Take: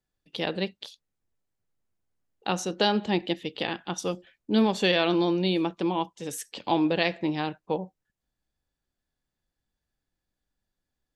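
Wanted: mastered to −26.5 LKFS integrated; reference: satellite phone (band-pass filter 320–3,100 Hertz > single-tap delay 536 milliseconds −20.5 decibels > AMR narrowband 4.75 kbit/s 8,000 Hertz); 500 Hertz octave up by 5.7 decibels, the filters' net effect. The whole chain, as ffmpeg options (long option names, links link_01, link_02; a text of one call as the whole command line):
ffmpeg -i in.wav -af "highpass=320,lowpass=3100,equalizer=frequency=500:width_type=o:gain=8.5,aecho=1:1:536:0.0944,volume=-0.5dB" -ar 8000 -c:a libopencore_amrnb -b:a 4750 out.amr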